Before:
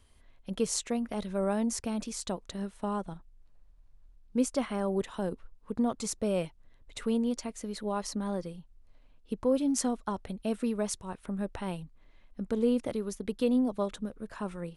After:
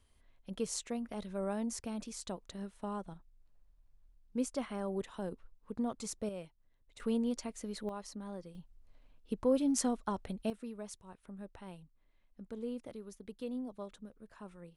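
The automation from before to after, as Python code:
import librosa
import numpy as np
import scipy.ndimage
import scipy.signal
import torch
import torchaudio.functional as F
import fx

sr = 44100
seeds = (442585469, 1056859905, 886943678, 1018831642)

y = fx.gain(x, sr, db=fx.steps((0.0, -7.0), (6.29, -14.0), (7.0, -4.0), (7.89, -11.0), (8.55, -2.5), (10.5, -13.5)))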